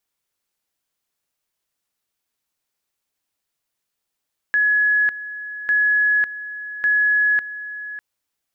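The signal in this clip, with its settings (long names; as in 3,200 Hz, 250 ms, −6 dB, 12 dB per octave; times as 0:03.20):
tone at two levels in turn 1,690 Hz −14 dBFS, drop 14.5 dB, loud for 0.55 s, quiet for 0.60 s, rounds 3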